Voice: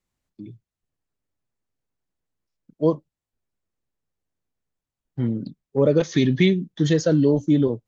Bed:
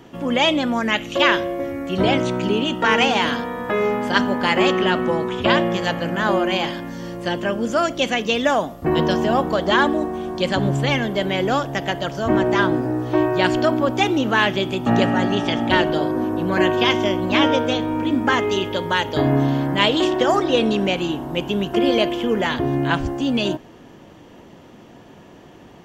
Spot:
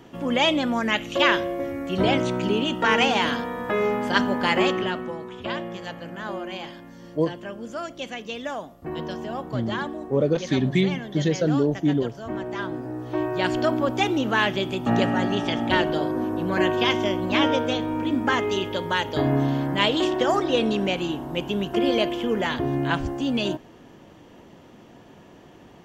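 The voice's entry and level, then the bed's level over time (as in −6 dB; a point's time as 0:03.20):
4.35 s, −3.5 dB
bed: 0:04.58 −3 dB
0:05.17 −13 dB
0:12.53 −13 dB
0:13.68 −4 dB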